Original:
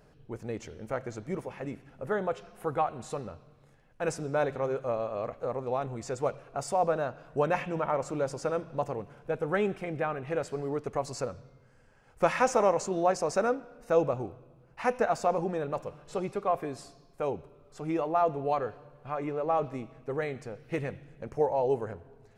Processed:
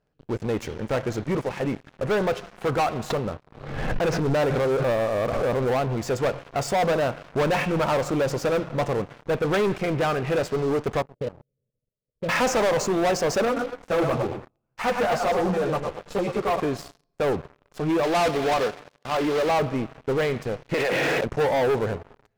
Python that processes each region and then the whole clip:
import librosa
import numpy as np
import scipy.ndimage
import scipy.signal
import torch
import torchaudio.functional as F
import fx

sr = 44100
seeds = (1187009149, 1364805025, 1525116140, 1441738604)

y = fx.chain(x, sr, fx.air_absorb(metres=210.0),
    fx.pre_swell(db_per_s=49.0), at=(3.1, 5.89))
y = fx.chain(y, sr, fx.cheby_ripple(hz=630.0, ripple_db=6),
    fx.level_steps(step_db=13), at=(11.02, 12.29))
y = fx.chain(y, sr, fx.echo_feedback(ms=111, feedback_pct=29, wet_db=-7.5),
    fx.ensemble(), at=(13.45, 16.6))
y = fx.chain(y, sr, fx.block_float(bits=3),
    fx.bandpass_edges(low_hz=190.0, high_hz=5400.0), at=(18.03, 19.51))
y = fx.chain(y, sr, fx.highpass(hz=560.0, slope=12),
    fx.env_flatten(amount_pct=100), at=(20.74, 21.24))
y = scipy.signal.sosfilt(scipy.signal.butter(2, 5700.0, 'lowpass', fs=sr, output='sos'), y)
y = fx.leveller(y, sr, passes=5)
y = y * librosa.db_to_amplitude(-5.5)